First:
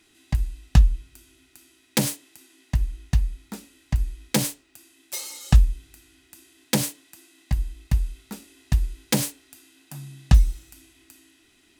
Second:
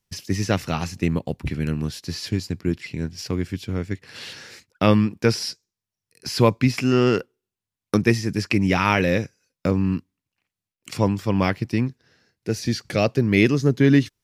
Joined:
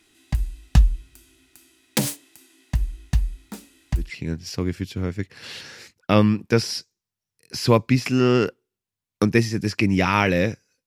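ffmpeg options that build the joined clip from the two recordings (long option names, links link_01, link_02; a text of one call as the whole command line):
ffmpeg -i cue0.wav -i cue1.wav -filter_complex "[0:a]apad=whole_dur=10.86,atrim=end=10.86,atrim=end=4.11,asetpts=PTS-STARTPTS[link_01];[1:a]atrim=start=2.67:end=9.58,asetpts=PTS-STARTPTS[link_02];[link_01][link_02]acrossfade=duration=0.16:curve1=tri:curve2=tri" out.wav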